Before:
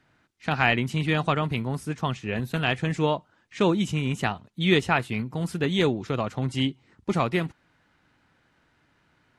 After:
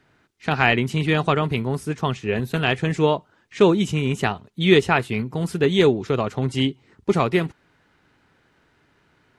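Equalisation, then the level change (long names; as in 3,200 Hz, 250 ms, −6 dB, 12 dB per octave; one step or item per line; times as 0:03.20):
parametric band 410 Hz +7.5 dB 0.3 octaves
+3.5 dB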